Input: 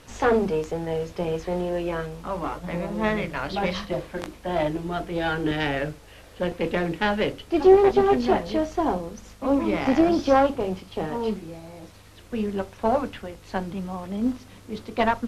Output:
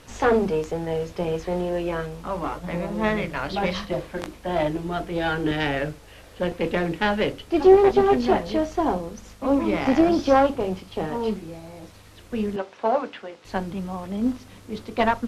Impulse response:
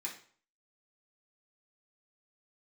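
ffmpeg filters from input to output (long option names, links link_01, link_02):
-filter_complex "[0:a]asettb=1/sr,asplit=3[link_01][link_02][link_03];[link_01]atrim=end=12.564[link_04];[link_02]atrim=start=12.56:end=13.45,asetpts=PTS-STARTPTS,afade=type=in:duration=0.004:curve=qsin,afade=type=out:start_time=0.886:duration=0.004:curve=qsin,highpass=320,lowpass=5100[link_05];[link_03]atrim=start=13.446[link_06];[link_04][link_05]acrossfade=duration=0.004:curve1=hsin:curve2=qsin[link_07];[link_07][link_06]acrossfade=duration=0.004:curve1=qsin:curve2=hsin,volume=1dB"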